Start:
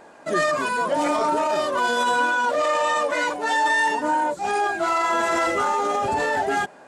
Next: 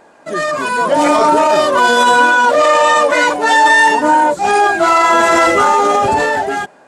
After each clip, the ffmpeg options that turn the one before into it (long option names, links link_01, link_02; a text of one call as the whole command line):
ffmpeg -i in.wav -af "dynaudnorm=framelen=160:gausssize=9:maxgain=11.5dB,volume=1.5dB" out.wav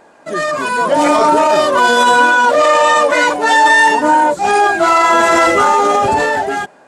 ffmpeg -i in.wav -af anull out.wav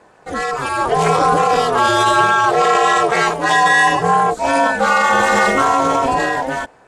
ffmpeg -i in.wav -af "aeval=exprs='0.891*(cos(1*acos(clip(val(0)/0.891,-1,1)))-cos(1*PI/2))+0.0158*(cos(3*acos(clip(val(0)/0.891,-1,1)))-cos(3*PI/2))':channel_layout=same,aeval=exprs='val(0)*sin(2*PI*130*n/s)':channel_layout=same" out.wav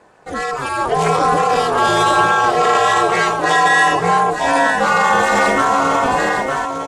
ffmpeg -i in.wav -af "aecho=1:1:905:0.447,volume=-1dB" out.wav